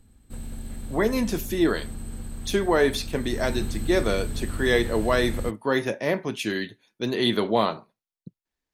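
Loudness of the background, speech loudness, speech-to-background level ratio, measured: -35.5 LUFS, -25.5 LUFS, 10.0 dB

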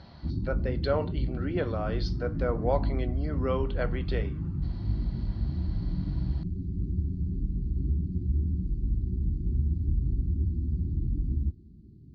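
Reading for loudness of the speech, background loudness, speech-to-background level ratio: -33.5 LUFS, -31.5 LUFS, -2.0 dB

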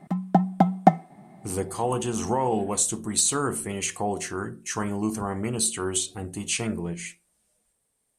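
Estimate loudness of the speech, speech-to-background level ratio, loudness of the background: -27.0 LUFS, -4.5 dB, -22.5 LUFS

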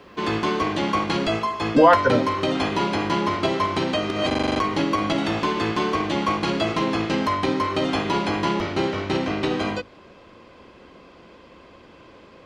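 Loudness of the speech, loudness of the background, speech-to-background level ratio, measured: -18.5 LUFS, -23.5 LUFS, 5.0 dB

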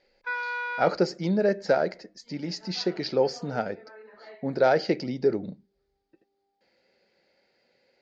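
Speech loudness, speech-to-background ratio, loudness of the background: -27.0 LUFS, 5.5 dB, -32.5 LUFS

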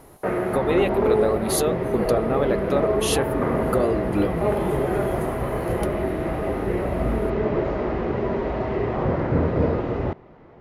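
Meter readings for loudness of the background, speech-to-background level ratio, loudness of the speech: -24.0 LUFS, -1.5 dB, -25.5 LUFS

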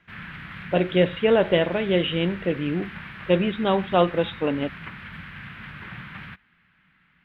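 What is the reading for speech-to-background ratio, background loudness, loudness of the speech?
15.0 dB, -38.0 LUFS, -23.0 LUFS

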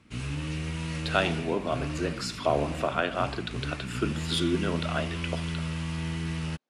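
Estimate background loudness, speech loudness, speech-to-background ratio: -34.0 LUFS, -30.5 LUFS, 3.5 dB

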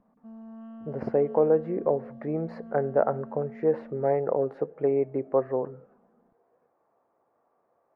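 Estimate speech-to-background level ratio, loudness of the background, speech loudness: 17.5 dB, -45.0 LUFS, -27.5 LUFS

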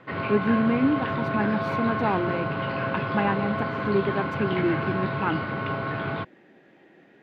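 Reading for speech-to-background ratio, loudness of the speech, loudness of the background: 1.0 dB, -27.5 LUFS, -28.5 LUFS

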